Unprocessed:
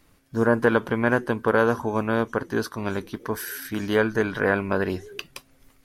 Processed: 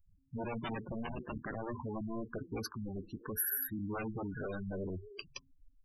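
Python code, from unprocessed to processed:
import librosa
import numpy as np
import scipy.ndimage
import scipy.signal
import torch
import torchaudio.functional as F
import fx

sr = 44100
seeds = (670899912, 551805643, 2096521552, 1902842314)

y = fx.cycle_switch(x, sr, every=3, mode='muted', at=(1.04, 1.67))
y = fx.low_shelf(y, sr, hz=200.0, db=8.5)
y = 10.0 ** (-20.5 / 20.0) * (np.abs((y / 10.0 ** (-20.5 / 20.0) + 3.0) % 4.0 - 2.0) - 1.0)
y = fx.spec_gate(y, sr, threshold_db=-10, keep='strong')
y = scipy.signal.lfilter([1.0, -0.8], [1.0], y)
y = F.gain(torch.from_numpy(y), 2.5).numpy()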